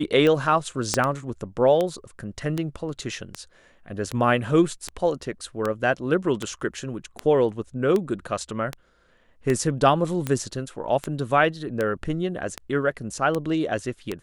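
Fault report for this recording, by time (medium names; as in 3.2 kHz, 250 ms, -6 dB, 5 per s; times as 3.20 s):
tick 78 rpm -12 dBFS
0.94 s: pop -6 dBFS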